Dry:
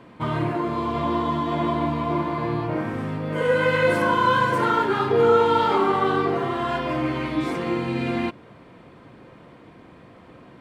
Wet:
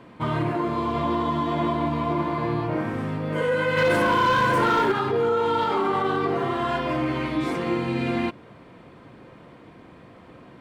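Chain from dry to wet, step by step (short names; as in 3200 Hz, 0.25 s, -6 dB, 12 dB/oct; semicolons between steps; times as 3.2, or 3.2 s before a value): 3.77–4.92 sample leveller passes 2; limiter -15 dBFS, peak gain reduction 8 dB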